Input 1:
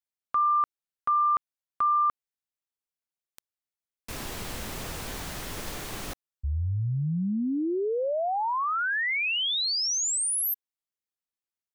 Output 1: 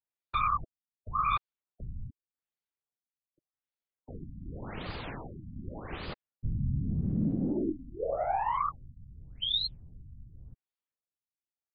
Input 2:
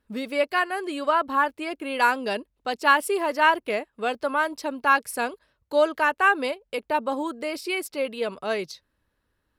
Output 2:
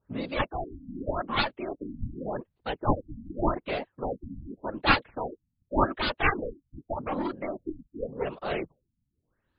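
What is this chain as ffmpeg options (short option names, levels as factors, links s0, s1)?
-af "aeval=exprs='0.562*(cos(1*acos(clip(val(0)/0.562,-1,1)))-cos(1*PI/2))+0.2*(cos(4*acos(clip(val(0)/0.562,-1,1)))-cos(4*PI/2))+0.0447*(cos(5*acos(clip(val(0)/0.562,-1,1)))-cos(5*PI/2))+0.224*(cos(7*acos(clip(val(0)/0.562,-1,1)))-cos(7*PI/2))':c=same,afftfilt=real='hypot(re,im)*cos(2*PI*random(0))':imag='hypot(re,im)*sin(2*PI*random(1))':win_size=512:overlap=0.75,afftfilt=real='re*lt(b*sr/1024,270*pow(5000/270,0.5+0.5*sin(2*PI*0.86*pts/sr)))':imag='im*lt(b*sr/1024,270*pow(5000/270,0.5+0.5*sin(2*PI*0.86*pts/sr)))':win_size=1024:overlap=0.75,volume=1.19"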